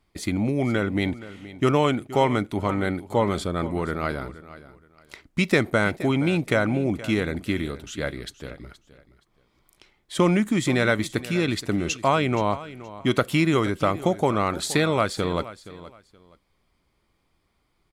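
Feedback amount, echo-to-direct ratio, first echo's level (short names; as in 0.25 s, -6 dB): 24%, -16.0 dB, -16.5 dB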